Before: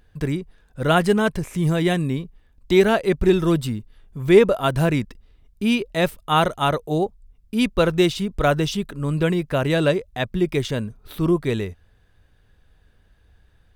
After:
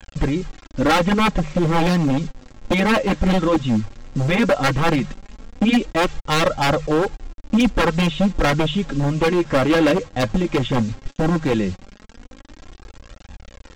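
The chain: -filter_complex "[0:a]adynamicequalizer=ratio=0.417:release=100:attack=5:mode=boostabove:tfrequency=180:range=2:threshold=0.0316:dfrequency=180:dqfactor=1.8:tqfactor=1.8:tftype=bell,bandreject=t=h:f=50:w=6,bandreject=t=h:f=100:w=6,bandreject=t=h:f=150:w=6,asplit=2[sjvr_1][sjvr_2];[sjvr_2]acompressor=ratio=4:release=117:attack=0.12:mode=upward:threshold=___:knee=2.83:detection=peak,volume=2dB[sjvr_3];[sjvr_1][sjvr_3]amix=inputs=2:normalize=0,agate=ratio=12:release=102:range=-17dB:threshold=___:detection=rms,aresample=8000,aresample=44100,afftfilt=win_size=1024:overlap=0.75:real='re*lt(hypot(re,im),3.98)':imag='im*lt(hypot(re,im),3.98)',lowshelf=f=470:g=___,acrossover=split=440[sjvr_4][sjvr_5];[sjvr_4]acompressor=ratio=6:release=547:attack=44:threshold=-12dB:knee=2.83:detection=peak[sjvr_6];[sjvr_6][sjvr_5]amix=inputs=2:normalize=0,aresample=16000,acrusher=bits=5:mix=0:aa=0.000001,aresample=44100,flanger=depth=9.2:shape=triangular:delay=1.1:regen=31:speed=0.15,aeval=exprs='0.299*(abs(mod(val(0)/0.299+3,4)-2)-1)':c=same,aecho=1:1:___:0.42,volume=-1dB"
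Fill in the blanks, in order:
-24dB, -26dB, 11.5, 3.7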